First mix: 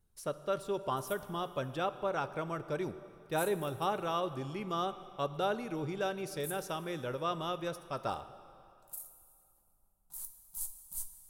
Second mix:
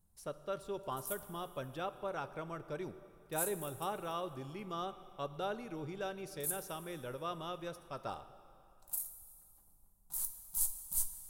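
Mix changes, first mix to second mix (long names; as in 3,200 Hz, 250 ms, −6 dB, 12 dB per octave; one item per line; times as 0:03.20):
speech −6.0 dB
background +6.0 dB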